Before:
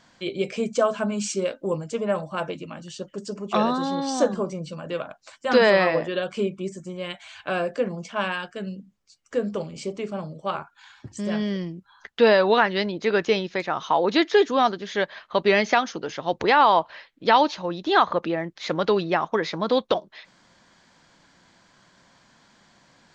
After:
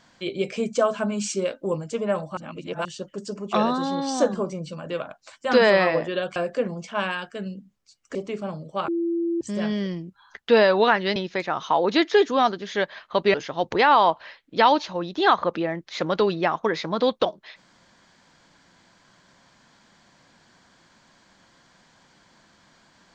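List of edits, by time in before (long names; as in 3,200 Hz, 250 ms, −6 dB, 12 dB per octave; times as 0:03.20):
0:02.37–0:02.85: reverse
0:06.36–0:07.57: remove
0:09.36–0:09.85: remove
0:10.58–0:11.11: beep over 338 Hz −21.5 dBFS
0:12.86–0:13.36: remove
0:15.54–0:16.03: remove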